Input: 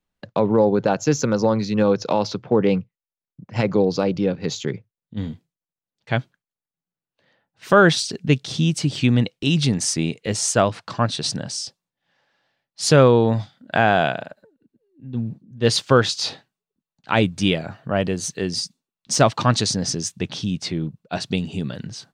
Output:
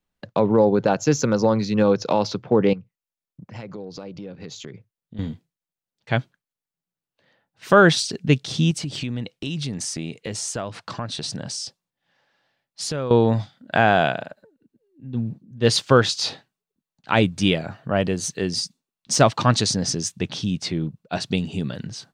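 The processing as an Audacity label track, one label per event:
2.730000	5.190000	downward compressor 4 to 1, threshold −35 dBFS
8.710000	13.110000	downward compressor 4 to 1, threshold −26 dBFS

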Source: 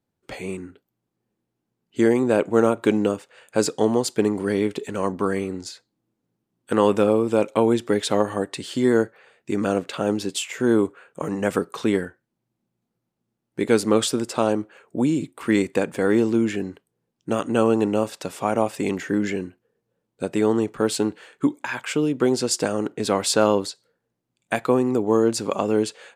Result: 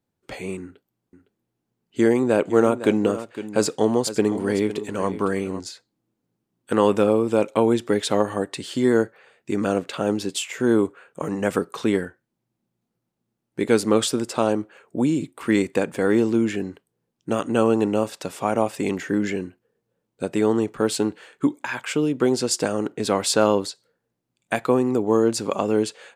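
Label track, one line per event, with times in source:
0.620000	5.600000	single-tap delay 509 ms −13 dB

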